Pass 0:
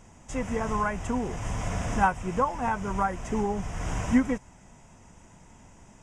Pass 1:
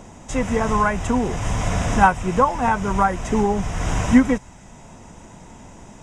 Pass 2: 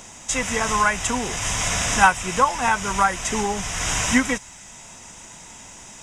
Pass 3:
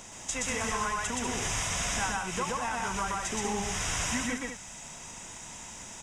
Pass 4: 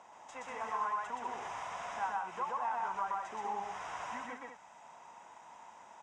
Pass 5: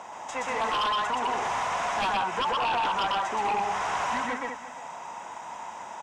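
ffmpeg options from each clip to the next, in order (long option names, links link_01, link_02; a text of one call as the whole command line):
ffmpeg -i in.wav -filter_complex "[0:a]equalizer=frequency=3900:width_type=o:width=0.27:gain=7,acrossover=split=180|970[link_01][link_02][link_03];[link_02]acompressor=mode=upward:threshold=-48dB:ratio=2.5[link_04];[link_01][link_04][link_03]amix=inputs=3:normalize=0,volume=8.5dB" out.wav
ffmpeg -i in.wav -af "tiltshelf=frequency=1300:gain=-10,volume=2dB" out.wav
ffmpeg -i in.wav -filter_complex "[0:a]acompressor=threshold=-26dB:ratio=6,asplit=2[link_01][link_02];[link_02]aecho=0:1:122.4|192.4:0.891|0.447[link_03];[link_01][link_03]amix=inputs=2:normalize=0,volume=-5dB" out.wav
ffmpeg -i in.wav -af "bandpass=frequency=890:width_type=q:width=2.3:csg=0" out.wav
ffmpeg -i in.wav -af "aecho=1:1:349:0.141,aeval=exprs='0.0708*sin(PI/2*3.55*val(0)/0.0708)':channel_layout=same" out.wav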